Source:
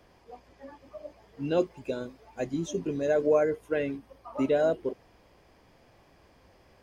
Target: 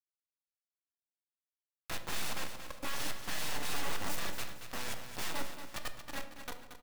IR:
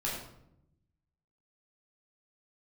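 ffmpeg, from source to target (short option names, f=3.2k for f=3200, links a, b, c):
-filter_complex "[0:a]areverse,highpass=f=100:p=1,aecho=1:1:3.7:0.9,acompressor=threshold=-33dB:ratio=4,aeval=exprs='(mod(56.2*val(0)+1,2)-1)/56.2':c=same,aeval=exprs='0.0188*(cos(1*acos(clip(val(0)/0.0188,-1,1)))-cos(1*PI/2))+0.0075*(cos(3*acos(clip(val(0)/0.0188,-1,1)))-cos(3*PI/2))+0.00188*(cos(6*acos(clip(val(0)/0.0188,-1,1)))-cos(6*PI/2))+0.00531*(cos(8*acos(clip(val(0)/0.0188,-1,1)))-cos(8*PI/2))':c=same,acrusher=bits=5:dc=4:mix=0:aa=0.000001,aecho=1:1:229|458|687|916:0.335|0.131|0.0509|0.0199,asplit=2[a][b];[1:a]atrim=start_sample=2205[c];[b][c]afir=irnorm=-1:irlink=0,volume=-10dB[d];[a][d]amix=inputs=2:normalize=0,volume=8.5dB"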